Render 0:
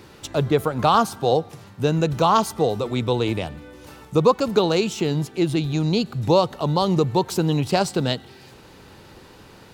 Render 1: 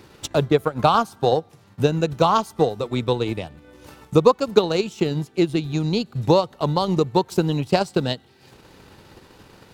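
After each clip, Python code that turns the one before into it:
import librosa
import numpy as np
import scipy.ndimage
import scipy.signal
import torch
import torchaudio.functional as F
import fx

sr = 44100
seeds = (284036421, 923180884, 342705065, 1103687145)

y = fx.transient(x, sr, attack_db=6, sustain_db=-8)
y = F.gain(torch.from_numpy(y), -2.0).numpy()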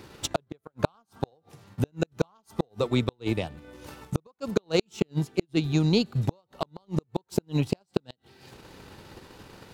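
y = fx.gate_flip(x, sr, shuts_db=-9.0, range_db=-42)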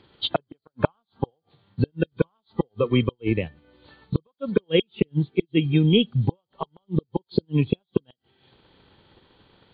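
y = fx.freq_compress(x, sr, knee_hz=3000.0, ratio=4.0)
y = fx.noise_reduce_blind(y, sr, reduce_db=14)
y = F.gain(torch.from_numpy(y), 4.5).numpy()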